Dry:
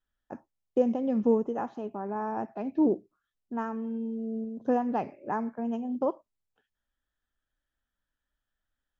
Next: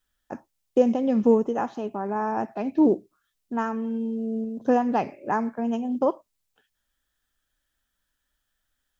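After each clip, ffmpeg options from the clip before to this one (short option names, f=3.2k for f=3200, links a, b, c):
-af "highshelf=f=2.4k:g=9,volume=5dB"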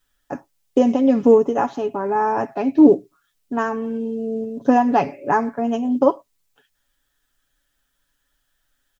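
-af "aecho=1:1:7.1:0.61,volume=5.5dB"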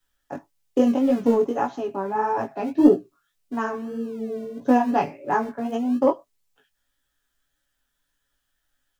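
-filter_complex "[0:a]aeval=exprs='0.891*(cos(1*acos(clip(val(0)/0.891,-1,1)))-cos(1*PI/2))+0.0447*(cos(3*acos(clip(val(0)/0.891,-1,1)))-cos(3*PI/2))':c=same,acrossover=split=150|790[a][b][c];[a]acrusher=samples=41:mix=1:aa=0.000001:lfo=1:lforange=24.6:lforate=0.95[d];[d][b][c]amix=inputs=3:normalize=0,flanger=delay=16:depth=5.1:speed=1.7"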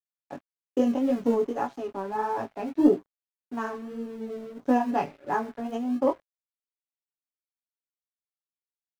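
-af "aeval=exprs='sgn(val(0))*max(abs(val(0))-0.00531,0)':c=same,volume=-4.5dB"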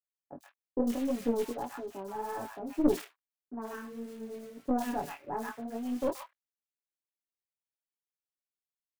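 -filter_complex "[0:a]acrusher=bits=4:mode=log:mix=0:aa=0.000001,acrossover=split=1100|3900[a][b][c];[c]adelay=100[d];[b]adelay=130[e];[a][e][d]amix=inputs=3:normalize=0,aeval=exprs='(tanh(3.98*val(0)+0.65)-tanh(0.65))/3.98':c=same,volume=-3dB"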